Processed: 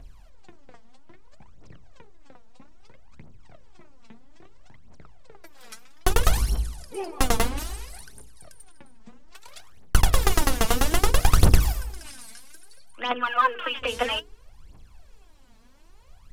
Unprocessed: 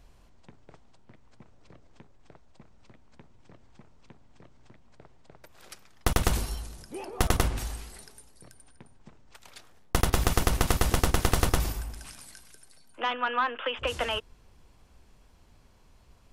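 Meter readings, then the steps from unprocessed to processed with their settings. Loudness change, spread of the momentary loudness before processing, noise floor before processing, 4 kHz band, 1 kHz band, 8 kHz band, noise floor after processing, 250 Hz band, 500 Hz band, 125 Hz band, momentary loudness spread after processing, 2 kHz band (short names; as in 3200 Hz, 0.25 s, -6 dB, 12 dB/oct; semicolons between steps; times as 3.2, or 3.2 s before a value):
+4.0 dB, 16 LU, -58 dBFS, +3.5 dB, +4.0 dB, +3.5 dB, -51 dBFS, +2.0 dB, +2.5 dB, +3.5 dB, 18 LU, +3.5 dB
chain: phaser 0.61 Hz, delay 4.6 ms, feedback 75%; notches 60/120/180/240/300/360/420/480 Hz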